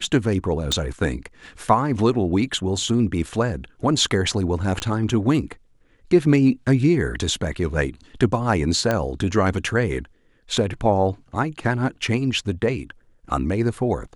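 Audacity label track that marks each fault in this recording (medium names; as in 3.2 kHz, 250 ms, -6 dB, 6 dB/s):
0.720000	0.720000	pop -9 dBFS
4.800000	4.800000	pop -12 dBFS
8.910000	8.910000	pop -8 dBFS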